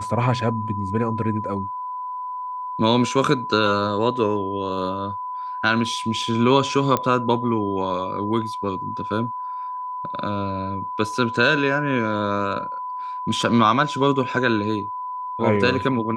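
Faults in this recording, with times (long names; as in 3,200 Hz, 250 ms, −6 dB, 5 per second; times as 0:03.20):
whistle 1,000 Hz −27 dBFS
0:06.97: click −8 dBFS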